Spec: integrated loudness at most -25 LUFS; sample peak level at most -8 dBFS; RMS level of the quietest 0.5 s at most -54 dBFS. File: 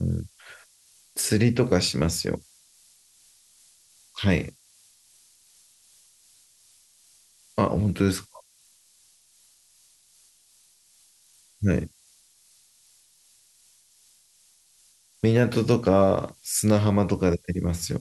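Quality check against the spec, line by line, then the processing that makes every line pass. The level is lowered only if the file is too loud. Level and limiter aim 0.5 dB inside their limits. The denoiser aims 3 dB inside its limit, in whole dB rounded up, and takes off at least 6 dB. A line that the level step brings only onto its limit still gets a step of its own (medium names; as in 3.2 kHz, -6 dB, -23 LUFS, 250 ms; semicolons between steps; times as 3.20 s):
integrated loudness -24.0 LUFS: fail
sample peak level -6.5 dBFS: fail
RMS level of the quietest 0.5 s -60 dBFS: pass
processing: trim -1.5 dB; peak limiter -8.5 dBFS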